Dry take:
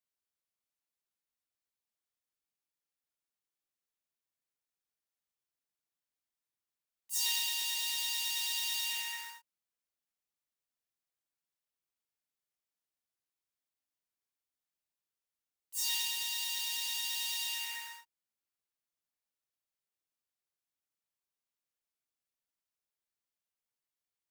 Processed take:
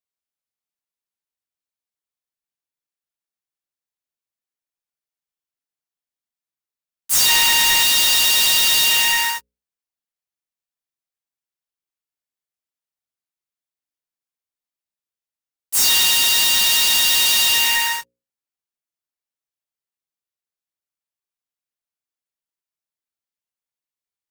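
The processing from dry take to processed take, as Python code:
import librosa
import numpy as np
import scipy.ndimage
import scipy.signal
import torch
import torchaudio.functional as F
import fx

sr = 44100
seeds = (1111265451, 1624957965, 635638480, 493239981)

y = fx.band_shelf(x, sr, hz=1400.0, db=9.0, octaves=1.7, at=(7.29, 7.83))
y = fx.leveller(y, sr, passes=5)
y = fx.hum_notches(y, sr, base_hz=60, count=9)
y = F.gain(torch.from_numpy(y), 8.5).numpy()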